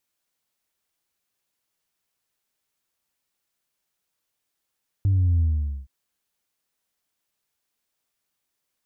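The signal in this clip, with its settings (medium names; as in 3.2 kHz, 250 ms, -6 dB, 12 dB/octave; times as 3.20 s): sub drop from 100 Hz, over 0.82 s, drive 0.5 dB, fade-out 0.47 s, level -17 dB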